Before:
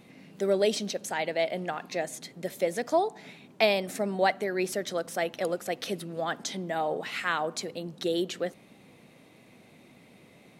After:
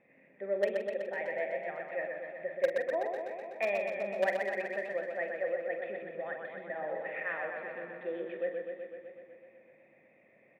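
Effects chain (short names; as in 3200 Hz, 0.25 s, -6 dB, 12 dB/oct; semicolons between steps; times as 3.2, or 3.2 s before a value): vocal tract filter e; bell 480 Hz -11 dB 0.64 oct; notches 60/120/180/240/300/360 Hz; in parallel at -7.5 dB: bit-crush 5-bit; on the sum: overdrive pedal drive 14 dB, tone 1300 Hz, clips at -11 dBFS; doubler 45 ms -9 dB; on a send: echo 0.519 s -18.5 dB; on the sum: warbling echo 0.125 s, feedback 72%, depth 53 cents, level -5 dB; gain +2.5 dB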